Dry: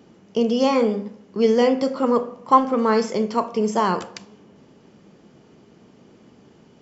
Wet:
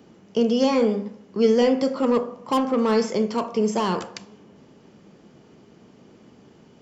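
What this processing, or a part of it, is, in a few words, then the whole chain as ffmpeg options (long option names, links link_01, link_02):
one-band saturation: -filter_complex "[0:a]acrossover=split=560|2200[link_01][link_02][link_03];[link_02]asoftclip=type=tanh:threshold=-25dB[link_04];[link_01][link_04][link_03]amix=inputs=3:normalize=0"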